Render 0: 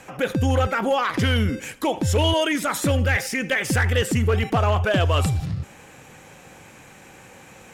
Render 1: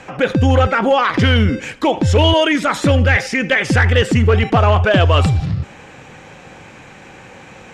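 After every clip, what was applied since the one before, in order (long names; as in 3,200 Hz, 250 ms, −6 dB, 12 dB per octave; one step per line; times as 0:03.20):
low-pass filter 4,900 Hz 12 dB per octave
level +7.5 dB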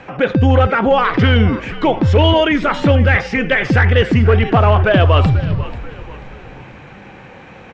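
high-frequency loss of the air 190 metres
echo with shifted repeats 488 ms, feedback 43%, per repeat −72 Hz, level −15.5 dB
level +1.5 dB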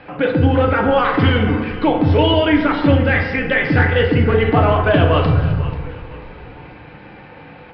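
feedback delay network reverb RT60 1.3 s, low-frequency decay 0.95×, high-frequency decay 0.5×, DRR 1.5 dB
downsampling to 11,025 Hz
level −4 dB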